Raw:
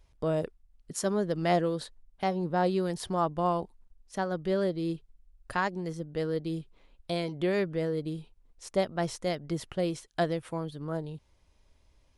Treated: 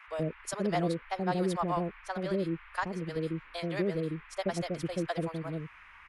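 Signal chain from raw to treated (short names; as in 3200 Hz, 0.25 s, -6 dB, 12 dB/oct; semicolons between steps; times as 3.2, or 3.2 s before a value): bands offset in time highs, lows 0.16 s, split 580 Hz; time stretch by phase-locked vocoder 0.5×; band noise 950–2500 Hz -54 dBFS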